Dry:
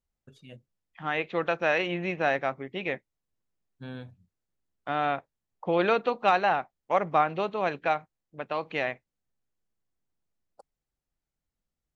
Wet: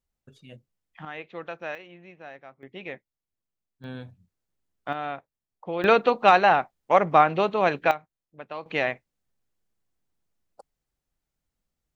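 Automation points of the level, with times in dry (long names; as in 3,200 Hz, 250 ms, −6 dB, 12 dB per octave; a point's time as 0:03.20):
+1 dB
from 0:01.05 −9 dB
from 0:01.75 −17.5 dB
from 0:02.63 −6 dB
from 0:03.84 +2 dB
from 0:04.93 −5 dB
from 0:05.84 +6 dB
from 0:07.91 −5 dB
from 0:08.66 +4 dB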